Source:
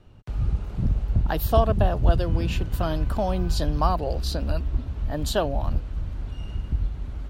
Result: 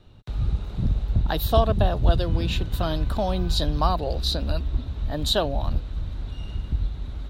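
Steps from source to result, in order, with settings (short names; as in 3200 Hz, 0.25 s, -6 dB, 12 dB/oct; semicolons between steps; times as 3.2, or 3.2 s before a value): bell 3800 Hz +13.5 dB 0.28 oct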